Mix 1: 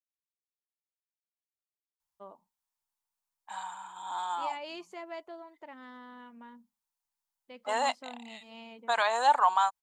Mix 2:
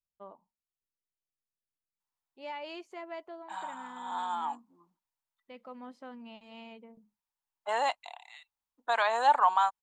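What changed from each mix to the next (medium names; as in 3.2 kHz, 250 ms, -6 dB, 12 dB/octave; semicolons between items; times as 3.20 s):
first voice: entry -2.00 s; master: add tone controls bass +1 dB, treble -7 dB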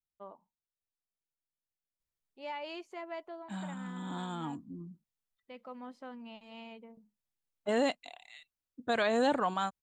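second voice: remove resonant high-pass 910 Hz, resonance Q 4.6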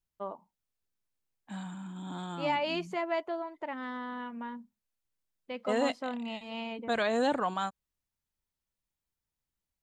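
first voice +10.0 dB; second voice: entry -2.00 s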